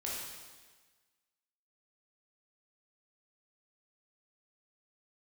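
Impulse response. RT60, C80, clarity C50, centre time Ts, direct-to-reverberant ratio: 1.4 s, 2.0 dB, −1.0 dB, 90 ms, −5.5 dB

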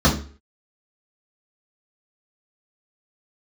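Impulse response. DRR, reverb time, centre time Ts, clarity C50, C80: −6.5 dB, 0.40 s, 22 ms, 8.5 dB, 14.0 dB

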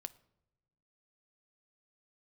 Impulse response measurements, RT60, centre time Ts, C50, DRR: non-exponential decay, 2 ms, 20.0 dB, 12.0 dB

